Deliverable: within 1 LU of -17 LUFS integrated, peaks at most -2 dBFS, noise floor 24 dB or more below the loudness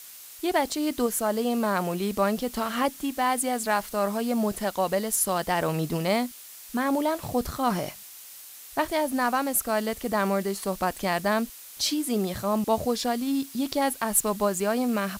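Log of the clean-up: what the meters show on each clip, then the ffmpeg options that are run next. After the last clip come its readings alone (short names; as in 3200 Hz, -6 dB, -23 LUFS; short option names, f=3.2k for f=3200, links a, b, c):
noise floor -45 dBFS; noise floor target -51 dBFS; loudness -26.5 LUFS; peak -11.0 dBFS; loudness target -17.0 LUFS
-> -af "afftdn=nr=6:nf=-45"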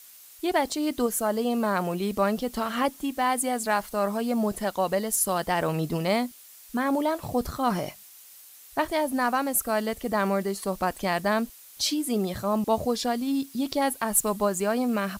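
noise floor -50 dBFS; noise floor target -51 dBFS
-> -af "afftdn=nr=6:nf=-50"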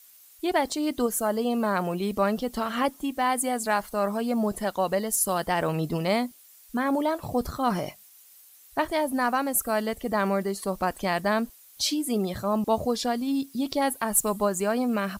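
noise floor -53 dBFS; loudness -27.0 LUFS; peak -11.0 dBFS; loudness target -17.0 LUFS
-> -af "volume=10dB,alimiter=limit=-2dB:level=0:latency=1"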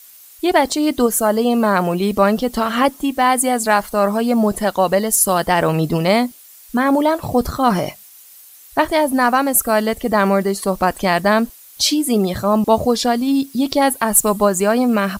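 loudness -17.0 LUFS; peak -2.0 dBFS; noise floor -43 dBFS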